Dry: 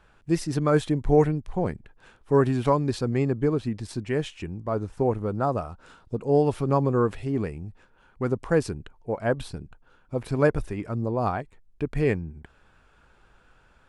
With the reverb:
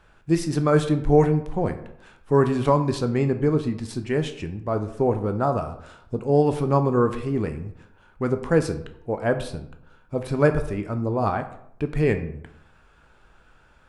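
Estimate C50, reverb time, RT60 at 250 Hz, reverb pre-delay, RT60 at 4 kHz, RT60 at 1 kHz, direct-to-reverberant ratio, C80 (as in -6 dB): 12.0 dB, 0.70 s, 0.75 s, 11 ms, 0.45 s, 0.70 s, 7.5 dB, 14.5 dB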